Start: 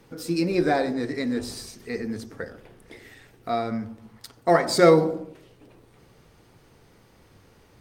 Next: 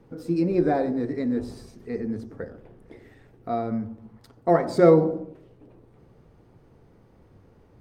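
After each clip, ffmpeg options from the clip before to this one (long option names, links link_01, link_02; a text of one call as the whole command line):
ffmpeg -i in.wav -af "tiltshelf=frequency=1500:gain=9,volume=-7dB" out.wav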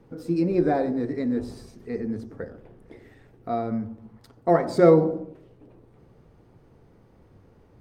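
ffmpeg -i in.wav -af anull out.wav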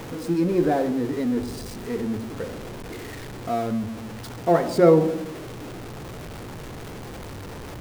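ffmpeg -i in.wav -af "aeval=exprs='val(0)+0.5*0.0266*sgn(val(0))':channel_layout=same" out.wav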